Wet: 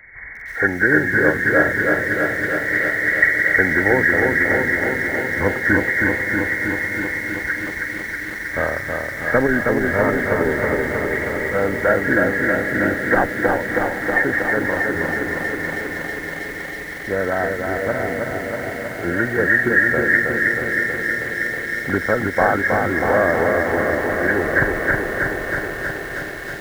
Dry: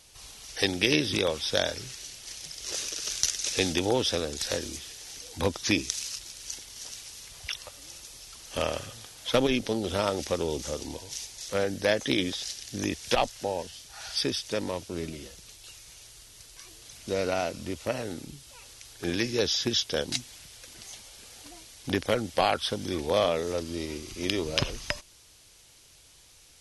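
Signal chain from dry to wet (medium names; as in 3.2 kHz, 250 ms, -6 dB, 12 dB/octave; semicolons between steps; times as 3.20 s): knee-point frequency compression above 1.3 kHz 4:1; echo that smears into a reverb 681 ms, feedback 63%, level -10 dB; bit-crushed delay 319 ms, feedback 80%, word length 8-bit, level -3.5 dB; trim +6.5 dB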